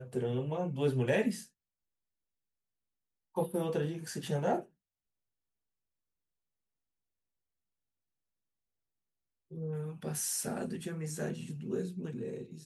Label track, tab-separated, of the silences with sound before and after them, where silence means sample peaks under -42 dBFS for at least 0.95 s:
1.440000	3.370000	silence
4.630000	9.520000	silence